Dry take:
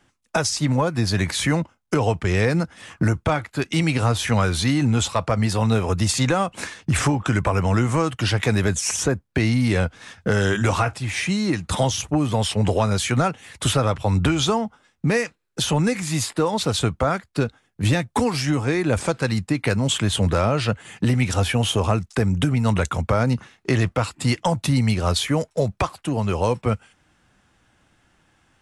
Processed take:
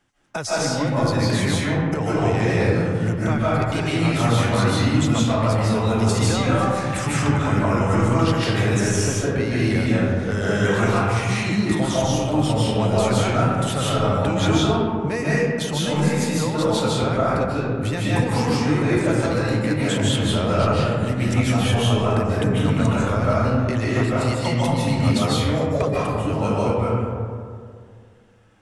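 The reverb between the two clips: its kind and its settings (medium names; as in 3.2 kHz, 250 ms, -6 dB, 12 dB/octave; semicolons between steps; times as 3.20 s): algorithmic reverb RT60 2.2 s, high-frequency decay 0.35×, pre-delay 110 ms, DRR -7.5 dB; trim -7 dB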